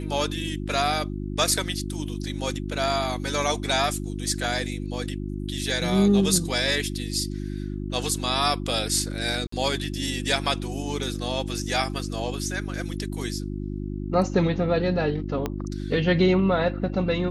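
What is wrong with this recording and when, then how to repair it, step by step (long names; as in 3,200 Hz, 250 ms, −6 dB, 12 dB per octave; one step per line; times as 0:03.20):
mains hum 50 Hz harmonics 7 −31 dBFS
0:09.47–0:09.52: drop-out 54 ms
0:15.46: click −13 dBFS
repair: click removal
hum removal 50 Hz, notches 7
repair the gap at 0:09.47, 54 ms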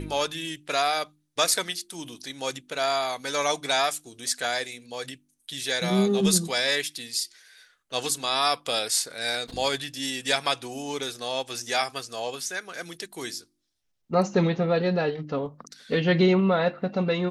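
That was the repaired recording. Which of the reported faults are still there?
0:15.46: click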